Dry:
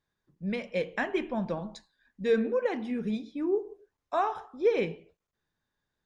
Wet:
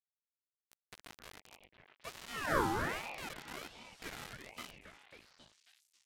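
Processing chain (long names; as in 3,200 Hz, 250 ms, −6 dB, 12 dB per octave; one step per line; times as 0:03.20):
peak hold with a decay on every bin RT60 2.37 s
source passing by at 0:02.60, 27 m/s, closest 1.7 metres
mains-hum notches 50/100 Hz
transient designer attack +8 dB, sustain +3 dB
in parallel at −2 dB: downward compressor 6 to 1, threshold −38 dBFS, peak gain reduction 17.5 dB
on the sum: phaser with its sweep stopped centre 500 Hz, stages 6
flanger swept by the level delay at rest 6.4 ms, full sweep at −30 dBFS
steady tone 1,400 Hz −48 dBFS
bit reduction 7 bits
downsampling to 32,000 Hz
echo through a band-pass that steps 272 ms, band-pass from 770 Hz, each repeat 0.7 octaves, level −2 dB
ring modulator whose carrier an LFO sweeps 1,100 Hz, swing 50%, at 1.3 Hz
level +1.5 dB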